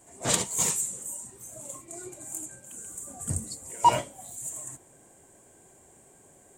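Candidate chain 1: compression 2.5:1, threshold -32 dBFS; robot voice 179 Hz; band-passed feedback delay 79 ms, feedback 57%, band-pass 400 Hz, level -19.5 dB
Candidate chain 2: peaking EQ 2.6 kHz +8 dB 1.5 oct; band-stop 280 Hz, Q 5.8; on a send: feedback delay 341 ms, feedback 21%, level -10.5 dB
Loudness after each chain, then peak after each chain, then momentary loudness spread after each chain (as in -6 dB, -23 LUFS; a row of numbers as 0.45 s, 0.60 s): -38.0 LUFS, -28.0 LUFS; -10.0 dBFS, -2.5 dBFS; 23 LU, 17 LU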